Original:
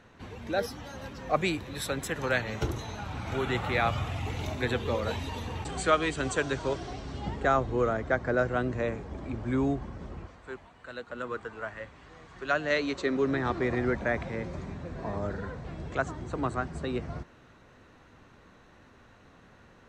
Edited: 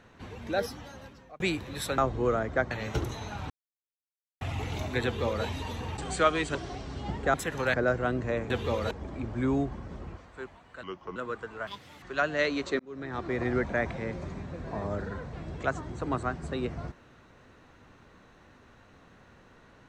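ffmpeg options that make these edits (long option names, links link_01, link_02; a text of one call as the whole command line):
ffmpeg -i in.wav -filter_complex "[0:a]asplit=16[link_01][link_02][link_03][link_04][link_05][link_06][link_07][link_08][link_09][link_10][link_11][link_12][link_13][link_14][link_15][link_16];[link_01]atrim=end=1.4,asetpts=PTS-STARTPTS,afade=type=out:start_time=0.67:duration=0.73[link_17];[link_02]atrim=start=1.4:end=1.982,asetpts=PTS-STARTPTS,afade=type=in:duration=0.004:curve=hsin[link_18];[link_03]atrim=start=7.518:end=8.252[link_19];[link_04]atrim=start=2.378:end=3.17,asetpts=PTS-STARTPTS,afade=type=out:start_time=0.788:duration=0.004:curve=hsin[link_20];[link_05]atrim=start=3.17:end=4.08,asetpts=PTS-STARTPTS,volume=0[link_21];[link_06]atrim=start=4.08:end=6.222,asetpts=PTS-STARTPTS,afade=type=in:duration=0.004:curve=hsin[link_22];[link_07]atrim=start=6.728:end=7.522[link_23];[link_08]atrim=start=1.978:end=2.382[link_24];[link_09]atrim=start=8.248:end=9.012[link_25];[link_10]atrim=start=4.708:end=5.122[link_26];[link_11]atrim=start=9.008:end=10.934[link_27];[link_12]atrim=start=10.93:end=11.18,asetpts=PTS-STARTPTS,asetrate=33516,aresample=44100[link_28];[link_13]atrim=start=11.176:end=11.694[link_29];[link_14]atrim=start=11.69:end=12.34,asetpts=PTS-STARTPTS,asetrate=80703,aresample=44100[link_30];[link_15]atrim=start=12.336:end=13.11,asetpts=PTS-STARTPTS,afade=type=out:start_time=0.77:duration=0.004:curve=hsin[link_31];[link_16]atrim=start=13.11,asetpts=PTS-STARTPTS,afade=type=in:duration=0.72[link_32];[link_17][link_18]concat=n=2:v=0:a=1[link_33];[link_33][link_19]acrossfade=duration=0.004:curve1=hsin:curve2=hsin[link_34];[link_20][link_21][link_22]concat=n=3:v=0:a=1[link_35];[link_34][link_35]acrossfade=duration=0.004:curve1=hsin:curve2=hsin[link_36];[link_36][link_23]acrossfade=duration=0.004:curve1=hsin:curve2=hsin[link_37];[link_37][link_24]acrossfade=duration=0.004:curve1=hsin:curve2=hsin[link_38];[link_38][link_25]acrossfade=duration=0.004:curve1=hsin:curve2=hsin[link_39];[link_39][link_26]acrossfade=duration=0.004:curve1=hsin:curve2=hsin[link_40];[link_40][link_27]acrossfade=duration=0.004:curve1=hsin:curve2=hsin[link_41];[link_41][link_28]acrossfade=duration=0.004:curve1=hsin:curve2=hsin[link_42];[link_42][link_29]acrossfade=duration=0.004:curve1=hsin:curve2=hsin[link_43];[link_43][link_30]acrossfade=duration=0.004:curve1=hsin:curve2=hsin[link_44];[link_31][link_32]concat=n=2:v=0:a=1[link_45];[link_44][link_45]acrossfade=duration=0.004:curve1=hsin:curve2=hsin" out.wav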